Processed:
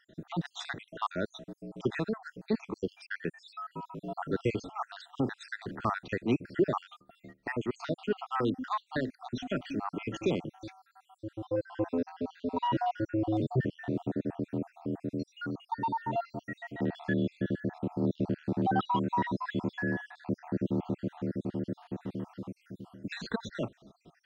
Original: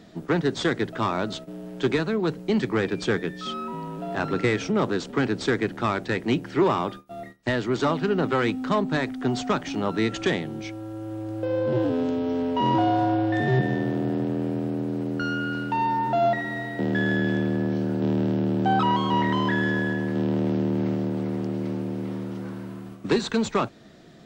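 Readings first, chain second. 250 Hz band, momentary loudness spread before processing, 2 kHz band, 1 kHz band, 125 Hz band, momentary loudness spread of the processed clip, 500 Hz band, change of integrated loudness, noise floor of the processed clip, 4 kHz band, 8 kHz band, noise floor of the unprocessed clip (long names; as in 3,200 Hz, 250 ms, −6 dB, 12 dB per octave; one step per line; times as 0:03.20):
−8.5 dB, 10 LU, −10.5 dB, −8.5 dB, −8.5 dB, 11 LU, −9.5 dB, −9.0 dB, −72 dBFS, −11.5 dB, below −10 dB, −43 dBFS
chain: time-frequency cells dropped at random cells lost 65%
high-shelf EQ 5,700 Hz −9 dB
notch filter 2,200 Hz, Q 9.9
level −4 dB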